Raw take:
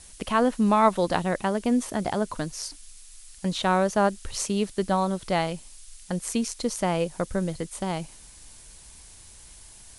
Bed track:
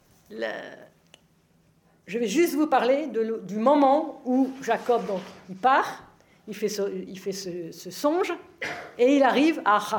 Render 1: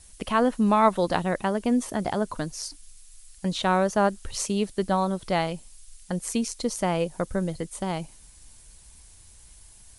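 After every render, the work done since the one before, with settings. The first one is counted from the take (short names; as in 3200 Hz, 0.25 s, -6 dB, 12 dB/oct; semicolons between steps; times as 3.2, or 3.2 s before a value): denoiser 6 dB, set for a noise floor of -49 dBFS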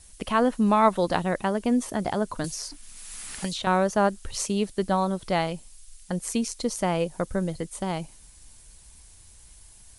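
2.44–3.67 three-band squash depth 100%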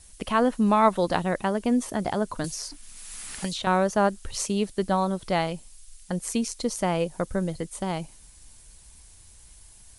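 nothing audible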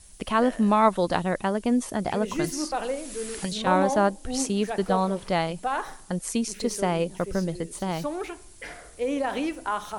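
add bed track -8 dB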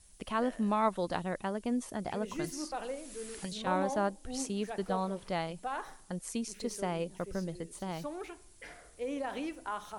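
gain -9.5 dB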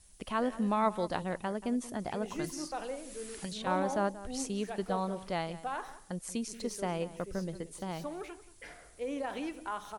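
outdoor echo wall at 31 m, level -16 dB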